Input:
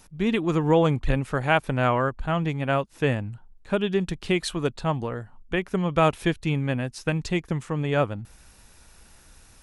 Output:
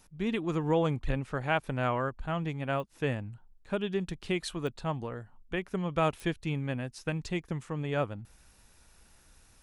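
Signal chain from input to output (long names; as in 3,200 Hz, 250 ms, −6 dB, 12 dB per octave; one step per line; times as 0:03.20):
0:01.10–0:01.61: Bessel low-pass filter 7,700 Hz
digital clicks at 0:02.80/0:04.67/0:06.20, −22 dBFS
level −7.5 dB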